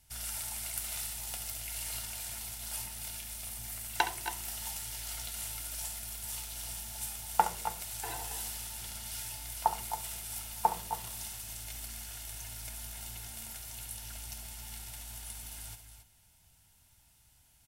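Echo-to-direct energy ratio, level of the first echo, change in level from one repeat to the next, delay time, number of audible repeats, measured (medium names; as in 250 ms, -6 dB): -7.5 dB, -11.5 dB, no regular repeats, 68 ms, 2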